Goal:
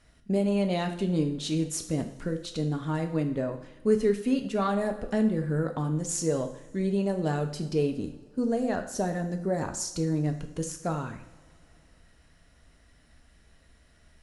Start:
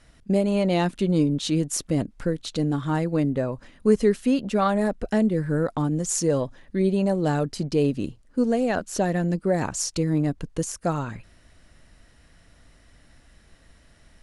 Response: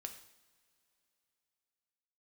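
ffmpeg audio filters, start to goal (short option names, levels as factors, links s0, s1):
-filter_complex "[0:a]asettb=1/sr,asplit=3[s0][s1][s2];[s0]atrim=end=7.944[s3];[s1]atrim=start=7.94:end=10.16,asetpts=PTS-STARTPTS,afade=t=in:d=0.004:c=qsin,afade=t=out:st=2.216:d=0.004:c=qsin,equalizer=f=2600:w=1.7:g=-7[s4];[s2]atrim=start=10.156[s5];[s3][s4]acrossfade=d=0.004:c1=hsin:c2=qsin[s6];[s6][s5]acrossfade=d=0.004:c1=qsin:c2=hsin[s7];[1:a]atrim=start_sample=2205,asetrate=48510,aresample=44100[s8];[s7][s8]afir=irnorm=-1:irlink=0"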